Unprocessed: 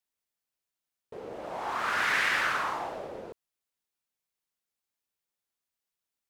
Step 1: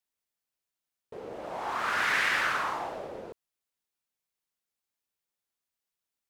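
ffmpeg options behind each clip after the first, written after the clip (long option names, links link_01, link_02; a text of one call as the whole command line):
ffmpeg -i in.wav -af anull out.wav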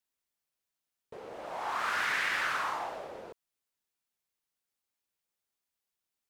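ffmpeg -i in.wav -filter_complex "[0:a]acrossover=split=610|3400[link_01][link_02][link_03];[link_01]acompressor=threshold=-49dB:ratio=4[link_04];[link_02]acompressor=threshold=-29dB:ratio=4[link_05];[link_03]acompressor=threshold=-42dB:ratio=4[link_06];[link_04][link_05][link_06]amix=inputs=3:normalize=0" out.wav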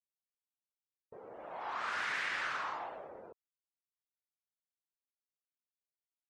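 ffmpeg -i in.wav -af "afftdn=noise_reduction=22:noise_floor=-53,volume=-5.5dB" out.wav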